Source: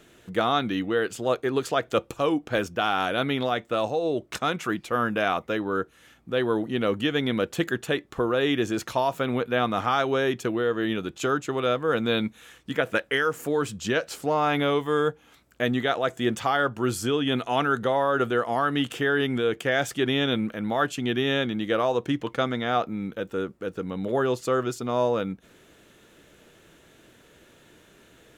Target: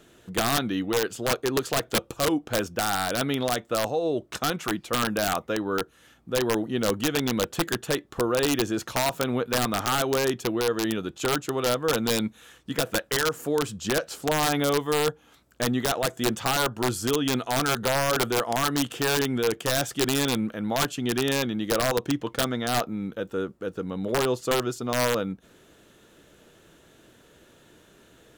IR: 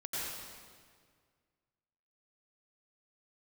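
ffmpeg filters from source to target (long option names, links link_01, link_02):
-af "aeval=exprs='(mod(5.96*val(0)+1,2)-1)/5.96':channel_layout=same,equalizer=frequency=2200:width_type=o:width=0.6:gain=-4.5"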